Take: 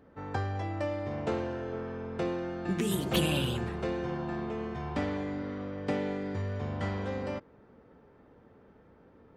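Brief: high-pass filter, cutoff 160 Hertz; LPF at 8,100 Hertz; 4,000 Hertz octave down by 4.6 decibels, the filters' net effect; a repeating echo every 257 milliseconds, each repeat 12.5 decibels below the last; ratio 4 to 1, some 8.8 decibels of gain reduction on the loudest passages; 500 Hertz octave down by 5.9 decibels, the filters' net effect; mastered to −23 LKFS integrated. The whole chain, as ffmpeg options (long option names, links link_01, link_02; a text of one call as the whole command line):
ffmpeg -i in.wav -af "highpass=160,lowpass=8100,equalizer=frequency=500:width_type=o:gain=-7.5,equalizer=frequency=4000:width_type=o:gain=-6.5,acompressor=threshold=-38dB:ratio=4,aecho=1:1:257|514|771:0.237|0.0569|0.0137,volume=19dB" out.wav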